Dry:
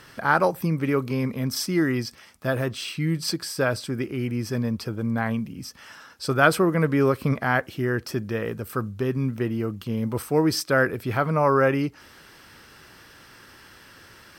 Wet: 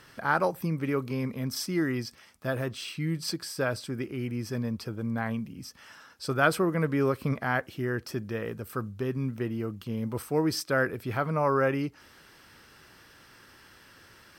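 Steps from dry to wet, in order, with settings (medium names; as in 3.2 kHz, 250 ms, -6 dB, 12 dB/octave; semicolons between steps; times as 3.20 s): trim -5.5 dB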